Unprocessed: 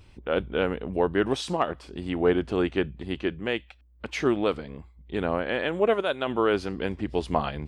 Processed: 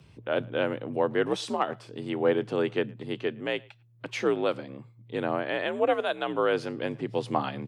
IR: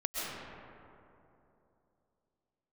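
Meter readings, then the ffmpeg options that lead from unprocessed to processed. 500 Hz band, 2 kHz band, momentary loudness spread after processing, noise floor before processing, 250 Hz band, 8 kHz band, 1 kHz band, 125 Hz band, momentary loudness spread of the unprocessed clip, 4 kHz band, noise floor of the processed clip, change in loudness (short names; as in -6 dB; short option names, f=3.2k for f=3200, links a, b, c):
-1.5 dB, -1.5 dB, 9 LU, -55 dBFS, -4.0 dB, -2.0 dB, -1.0 dB, -4.0 dB, 9 LU, -2.0 dB, -56 dBFS, -2.0 dB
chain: -filter_complex "[0:a]afreqshift=57,asplit=2[a][b];[b]adelay=110,highpass=300,lowpass=3.4k,asoftclip=type=hard:threshold=-16dB,volume=-25dB[c];[a][c]amix=inputs=2:normalize=0,volume=-2dB"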